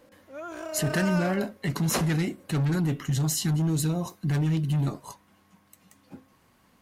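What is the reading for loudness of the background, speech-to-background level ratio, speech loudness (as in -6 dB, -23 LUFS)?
-35.5 LUFS, 8.5 dB, -27.0 LUFS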